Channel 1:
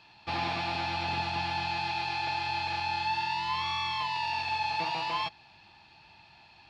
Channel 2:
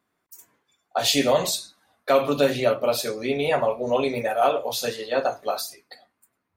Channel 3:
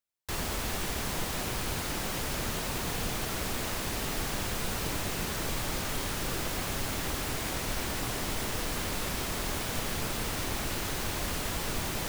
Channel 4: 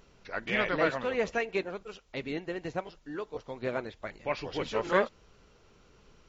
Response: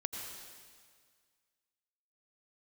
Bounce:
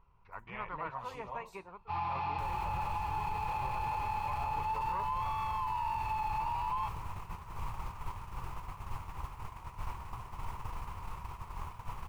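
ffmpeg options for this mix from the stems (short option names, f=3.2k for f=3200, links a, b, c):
-filter_complex "[0:a]highpass=f=74:w=0.5412,highpass=f=74:w=1.3066,adelay=1600,volume=2.5dB[a];[1:a]volume=-17dB[b];[2:a]adelay=2100,volume=0dB[c];[3:a]equalizer=f=8.1k:w=1.3:g=-11.5,volume=-3dB[d];[a][c]amix=inputs=2:normalize=0,agate=range=-13dB:threshold=-31dB:ratio=16:detection=peak,alimiter=limit=-19dB:level=0:latency=1:release=377,volume=0dB[e];[b][d][e]amix=inputs=3:normalize=0,firequalizer=gain_entry='entry(100,0);entry(260,-19);entry(380,-14);entry(620,-15);entry(970,6);entry(1600,-15);entry(2500,-10);entry(3500,-21)':delay=0.05:min_phase=1,alimiter=level_in=3.5dB:limit=-24dB:level=0:latency=1:release=19,volume=-3.5dB"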